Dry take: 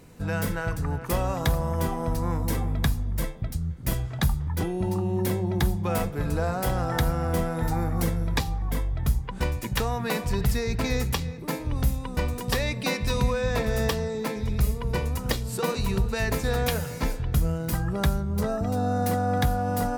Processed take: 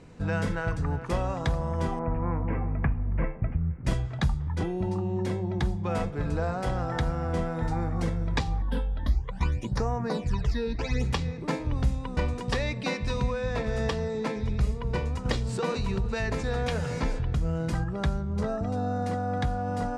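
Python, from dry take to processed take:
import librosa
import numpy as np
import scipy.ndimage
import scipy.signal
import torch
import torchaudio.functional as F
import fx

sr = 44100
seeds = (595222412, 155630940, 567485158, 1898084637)

y = fx.ellip_lowpass(x, sr, hz=2500.0, order=4, stop_db=40, at=(1.99, 3.85))
y = fx.phaser_stages(y, sr, stages=12, low_hz=110.0, high_hz=3900.0, hz=fx.line((8.61, 0.31), (11.03, 1.0)), feedback_pct=25, at=(8.61, 11.03), fade=0.02)
y = fx.env_flatten(y, sr, amount_pct=50, at=(15.25, 17.84))
y = scipy.signal.sosfilt(scipy.signal.butter(4, 8500.0, 'lowpass', fs=sr, output='sos'), y)
y = fx.high_shelf(y, sr, hz=5700.0, db=-9.5)
y = fx.rider(y, sr, range_db=10, speed_s=0.5)
y = y * 10.0 ** (-2.5 / 20.0)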